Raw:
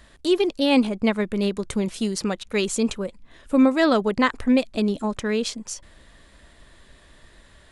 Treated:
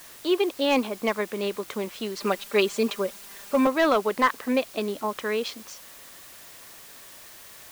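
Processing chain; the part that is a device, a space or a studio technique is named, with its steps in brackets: drive-through speaker (BPF 380–3700 Hz; bell 1100 Hz +5 dB 0.24 oct; hard clip -12.5 dBFS, distortion -19 dB; white noise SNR 19 dB); 2.2–3.67 comb 5 ms, depth 90%

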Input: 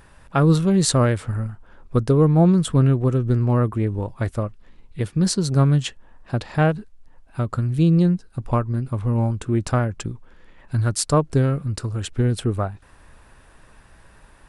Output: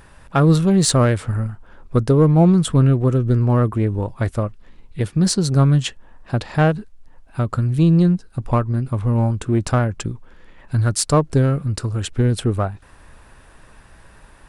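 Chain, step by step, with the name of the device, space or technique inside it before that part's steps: parallel distortion (in parallel at -10 dB: hard clip -19 dBFS, distortion -8 dB); on the sum: gain +1 dB

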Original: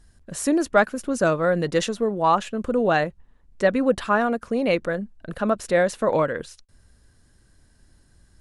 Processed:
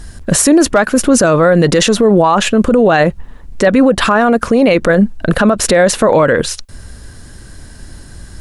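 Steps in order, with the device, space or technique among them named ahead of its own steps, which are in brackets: loud club master (compressor 2:1, threshold -24 dBFS, peak gain reduction 7 dB; hard clip -14 dBFS, distortion -36 dB; maximiser +24.5 dB); gain -1 dB

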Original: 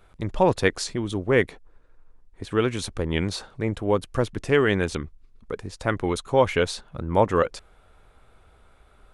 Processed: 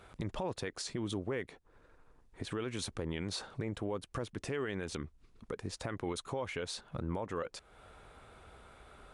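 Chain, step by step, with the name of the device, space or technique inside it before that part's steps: podcast mastering chain (HPF 90 Hz 6 dB/oct; compressor 2.5:1, threshold -40 dBFS, peak gain reduction 17.5 dB; limiter -30.5 dBFS, peak gain reduction 9 dB; gain +3.5 dB; MP3 128 kbps 24000 Hz)

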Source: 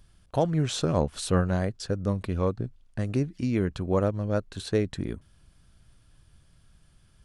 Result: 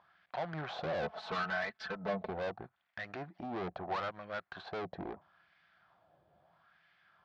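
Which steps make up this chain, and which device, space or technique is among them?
wah-wah guitar rig (wah 0.76 Hz 530–2000 Hz, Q 2.4; tube stage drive 46 dB, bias 0.55; speaker cabinet 94–4300 Hz, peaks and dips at 120 Hz -5 dB, 170 Hz +4 dB, 260 Hz -7 dB, 440 Hz -5 dB, 730 Hz +9 dB, 2800 Hz -4 dB); 1.02–2.3 comb 4.6 ms, depth 96%; gain +11.5 dB

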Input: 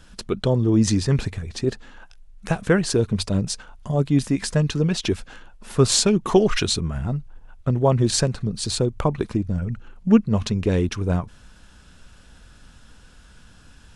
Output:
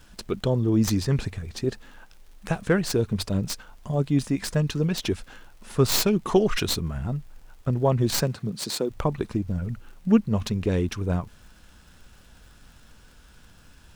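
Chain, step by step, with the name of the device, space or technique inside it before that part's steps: record under a worn stylus (tracing distortion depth 0.092 ms; crackle -41 dBFS; pink noise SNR 37 dB); 8.21–8.89 HPF 71 Hz -> 230 Hz 24 dB/oct; gain -3.5 dB

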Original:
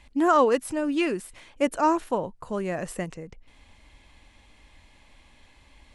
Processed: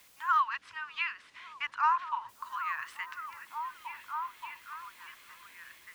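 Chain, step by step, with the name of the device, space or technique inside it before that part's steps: Chebyshev band-stop 110–1000 Hz, order 5; dictaphone (BPF 350–4200 Hz; AGC gain up to 7 dB; wow and flutter; white noise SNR 25 dB); 0.4–2.29 air absorption 89 m; delay with a stepping band-pass 0.576 s, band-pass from 260 Hz, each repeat 0.7 oct, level -0.5 dB; dynamic EQ 7600 Hz, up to -8 dB, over -51 dBFS, Q 0.79; gain -4 dB

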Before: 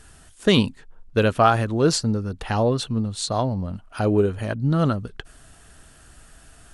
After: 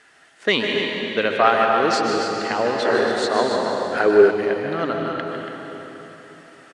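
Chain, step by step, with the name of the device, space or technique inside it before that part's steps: station announcement (BPF 380–4900 Hz; bell 2000 Hz +10.5 dB 0.37 oct; loudspeakers at several distances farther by 52 m -11 dB, 97 m -9 dB; reverb RT60 4.1 s, pre-delay 0.117 s, DRR 1 dB); 2.85–4.31 fifteen-band EQ 400 Hz +11 dB, 1600 Hz +12 dB, 10000 Hz +4 dB

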